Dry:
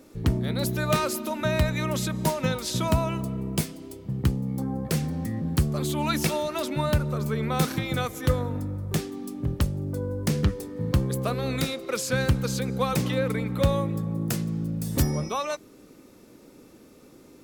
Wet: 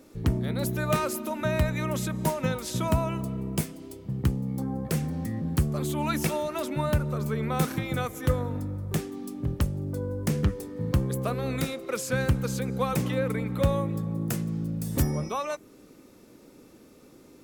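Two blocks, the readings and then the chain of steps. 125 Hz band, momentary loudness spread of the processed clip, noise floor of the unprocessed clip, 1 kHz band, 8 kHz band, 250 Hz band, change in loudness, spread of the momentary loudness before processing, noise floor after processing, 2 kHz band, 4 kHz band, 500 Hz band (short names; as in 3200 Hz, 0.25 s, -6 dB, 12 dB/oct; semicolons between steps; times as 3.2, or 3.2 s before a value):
-1.5 dB, 5 LU, -52 dBFS, -1.5 dB, -3.0 dB, -1.5 dB, -2.0 dB, 6 LU, -53 dBFS, -2.5 dB, -6.0 dB, -1.5 dB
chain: dynamic EQ 4300 Hz, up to -6 dB, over -48 dBFS, Q 1.3; gain -1.5 dB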